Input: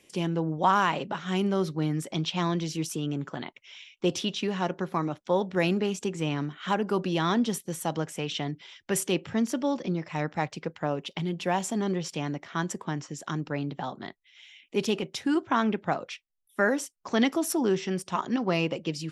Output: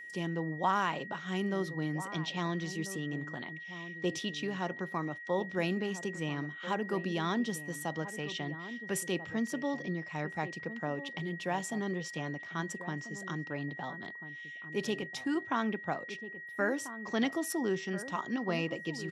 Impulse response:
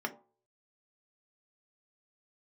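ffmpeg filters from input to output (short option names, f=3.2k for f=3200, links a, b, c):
-filter_complex "[0:a]aeval=exprs='val(0)+0.0141*sin(2*PI*1900*n/s)':c=same,asplit=2[a][b];[b]adelay=1341,volume=-12dB,highshelf=f=4k:g=-30.2[c];[a][c]amix=inputs=2:normalize=0,volume=-7dB"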